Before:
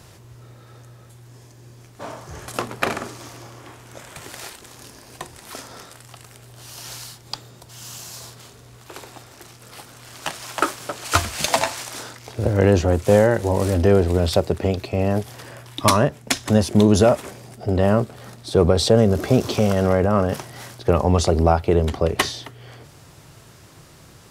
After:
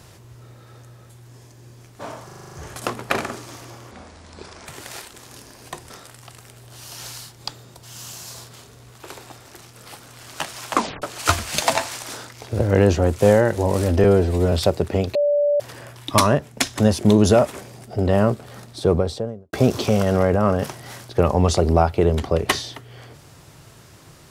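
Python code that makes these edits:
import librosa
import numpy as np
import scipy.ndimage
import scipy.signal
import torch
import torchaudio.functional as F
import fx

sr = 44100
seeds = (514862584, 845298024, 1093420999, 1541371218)

y = fx.studio_fade_out(x, sr, start_s=18.36, length_s=0.87)
y = fx.edit(y, sr, fx.stutter(start_s=2.25, slice_s=0.04, count=8),
    fx.speed_span(start_s=3.63, length_s=0.51, speed=0.68),
    fx.cut(start_s=5.38, length_s=0.38),
    fx.tape_stop(start_s=10.59, length_s=0.29),
    fx.stretch_span(start_s=13.9, length_s=0.32, factor=1.5),
    fx.bleep(start_s=14.85, length_s=0.45, hz=582.0, db=-15.0), tone=tone)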